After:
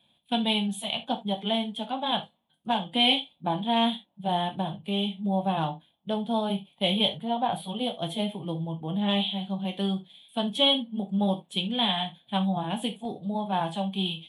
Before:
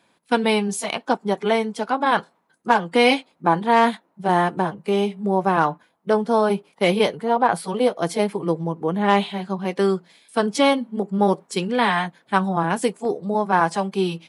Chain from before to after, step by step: FFT filter 100 Hz 0 dB, 230 Hz -6 dB, 420 Hz -18 dB, 690 Hz -6 dB, 1.3 kHz -20 dB, 2.1 kHz -15 dB, 3.4 kHz +7 dB, 5 kHz -25 dB, 12 kHz -7 dB; on a send: reverberation, pre-delay 3 ms, DRR 5.5 dB

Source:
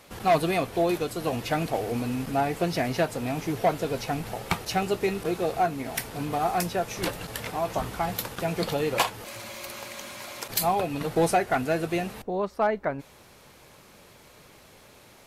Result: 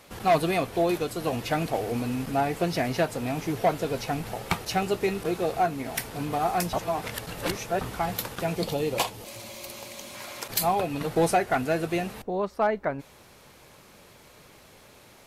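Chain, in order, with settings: 6.73–7.81 s: reverse; 8.55–10.14 s: peaking EQ 1.5 kHz -9 dB 1.1 oct

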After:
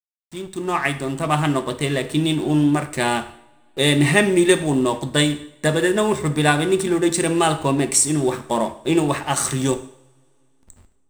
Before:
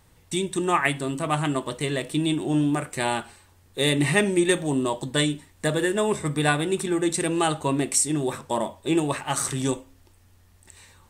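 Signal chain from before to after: fade-in on the opening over 1.32 s; hysteresis with a dead band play -36 dBFS; two-slope reverb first 0.65 s, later 3.2 s, from -28 dB, DRR 9.5 dB; trim +5 dB

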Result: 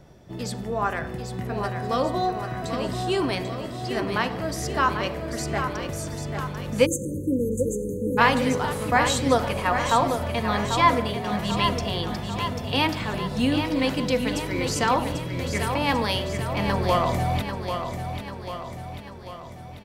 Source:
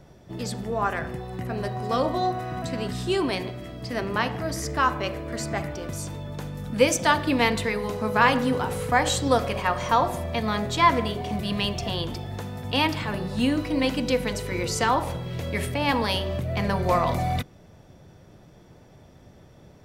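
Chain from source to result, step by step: feedback delay 792 ms, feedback 55%, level -7.5 dB; spectral selection erased 6.86–8.18 s, 580–6200 Hz

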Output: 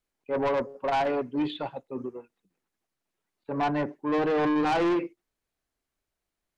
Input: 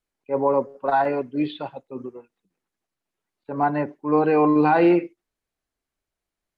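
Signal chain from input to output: saturation -22 dBFS, distortion -8 dB

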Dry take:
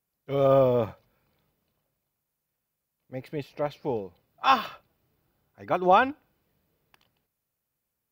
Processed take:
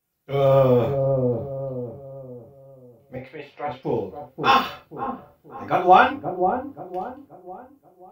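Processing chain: 3.16–3.83 s: three-band isolator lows -18 dB, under 530 Hz, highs -17 dB, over 3.3 kHz; feedback echo behind a low-pass 531 ms, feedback 37%, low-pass 570 Hz, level -3 dB; reverberation, pre-delay 3 ms, DRR -2 dB; trim +1 dB

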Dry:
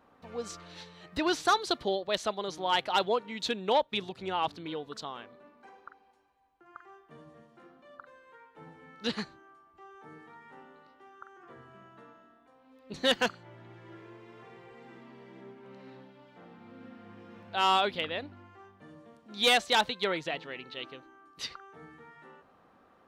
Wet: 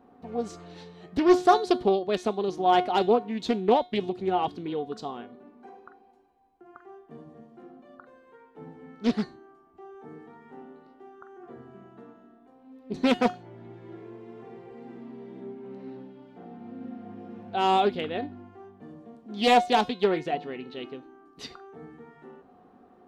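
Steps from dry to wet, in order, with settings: bass shelf 410 Hz +7.5 dB; feedback comb 360 Hz, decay 0.31 s, harmonics all, mix 70%; small resonant body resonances 250/410/720 Hz, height 11 dB, ringing for 30 ms; loudspeaker Doppler distortion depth 0.34 ms; trim +5 dB

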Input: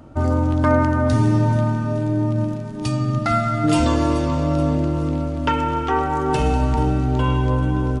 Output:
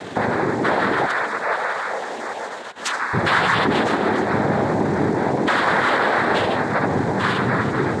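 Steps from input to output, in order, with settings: spectral gate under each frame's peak -25 dB strong; 1.05–3.13 s: high-pass 1.4 kHz 12 dB/octave; dynamic bell 2.4 kHz, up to +7 dB, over -39 dBFS, Q 0.85; compression, threshold -20 dBFS, peak gain reduction 9 dB; peak limiter -20 dBFS, peak gain reduction 10.5 dB; word length cut 8-bit, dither none; overdrive pedal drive 15 dB, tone 2.5 kHz, clips at -19.5 dBFS; noise-vocoded speech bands 6; reverberation RT60 0.70 s, pre-delay 60 ms, DRR 15 dB; trim +8.5 dB

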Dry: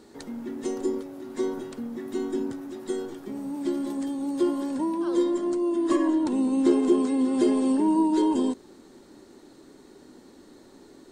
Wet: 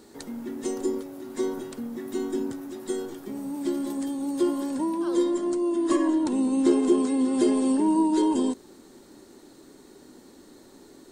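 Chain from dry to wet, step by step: treble shelf 8.3 kHz +10 dB

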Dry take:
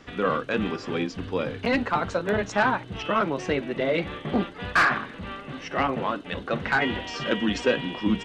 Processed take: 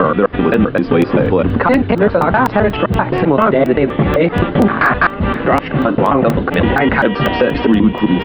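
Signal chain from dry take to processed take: slices played last to first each 130 ms, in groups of 3; treble shelf 2.2 kHz -11 dB; compression, threshold -30 dBFS, peak gain reduction 12 dB; distance through air 210 m; resampled via 11.025 kHz; crackling interface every 0.24 s, samples 64, zero, from 0.54 s; loudness maximiser +24.5 dB; trim -1 dB

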